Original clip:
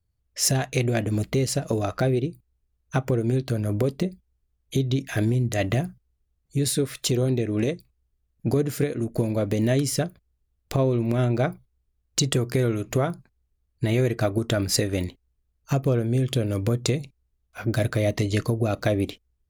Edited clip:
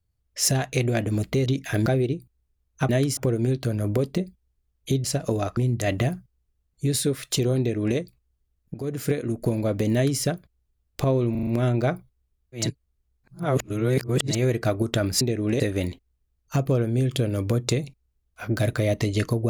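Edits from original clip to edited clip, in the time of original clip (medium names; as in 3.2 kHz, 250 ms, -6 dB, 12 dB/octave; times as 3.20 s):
1.46–1.99 s: swap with 4.89–5.29 s
7.31–7.70 s: copy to 14.77 s
8.46–8.79 s: fade in, from -21.5 dB
9.65–9.93 s: copy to 3.02 s
11.03 s: stutter 0.04 s, 5 plays
12.20–13.89 s: reverse, crossfade 0.24 s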